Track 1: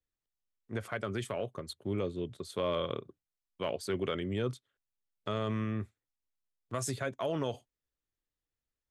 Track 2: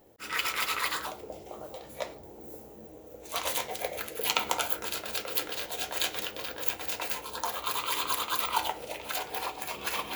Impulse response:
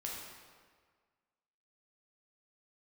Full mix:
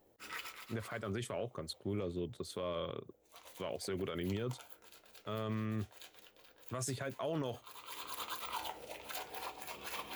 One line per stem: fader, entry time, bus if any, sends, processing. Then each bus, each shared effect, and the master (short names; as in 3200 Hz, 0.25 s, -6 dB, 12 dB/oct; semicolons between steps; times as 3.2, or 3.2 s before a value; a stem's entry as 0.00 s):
-0.5 dB, 0.00 s, no send, dry
-9.5 dB, 0.00 s, no send, auto duck -15 dB, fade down 0.40 s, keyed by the first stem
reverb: off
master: limiter -29 dBFS, peak gain reduction 11.5 dB